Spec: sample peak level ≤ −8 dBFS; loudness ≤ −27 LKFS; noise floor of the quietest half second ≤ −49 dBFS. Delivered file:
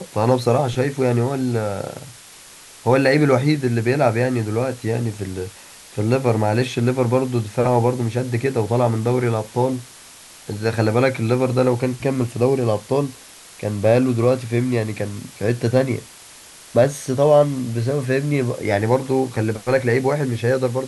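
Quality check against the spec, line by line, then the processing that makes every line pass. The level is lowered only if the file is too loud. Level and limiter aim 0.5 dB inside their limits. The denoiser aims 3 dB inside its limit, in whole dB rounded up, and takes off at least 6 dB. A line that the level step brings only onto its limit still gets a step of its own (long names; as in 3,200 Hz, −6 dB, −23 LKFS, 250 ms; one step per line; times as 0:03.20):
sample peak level −3.5 dBFS: out of spec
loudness −20.0 LKFS: out of spec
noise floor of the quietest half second −43 dBFS: out of spec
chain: level −7.5 dB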